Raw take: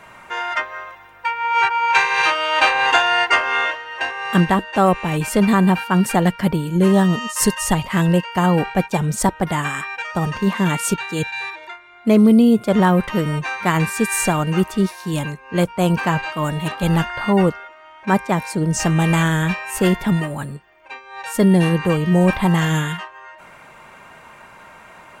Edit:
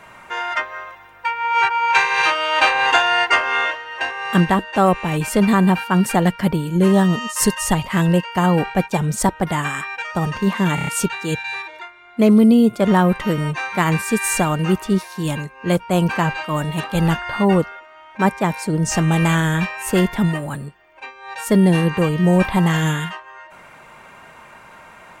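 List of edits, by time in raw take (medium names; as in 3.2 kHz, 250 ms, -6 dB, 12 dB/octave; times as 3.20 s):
10.75 s: stutter 0.03 s, 5 plays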